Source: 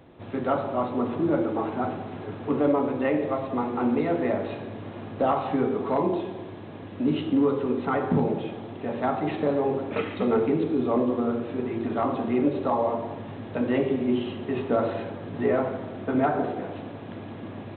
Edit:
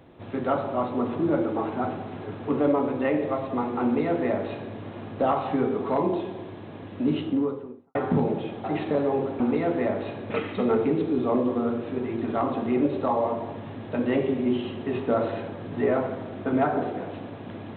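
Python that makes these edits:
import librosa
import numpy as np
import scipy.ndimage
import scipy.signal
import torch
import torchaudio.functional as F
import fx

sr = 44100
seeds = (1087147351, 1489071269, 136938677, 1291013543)

y = fx.studio_fade_out(x, sr, start_s=7.08, length_s=0.87)
y = fx.edit(y, sr, fx.duplicate(start_s=3.84, length_s=0.9, to_s=9.92),
    fx.cut(start_s=8.64, length_s=0.52), tone=tone)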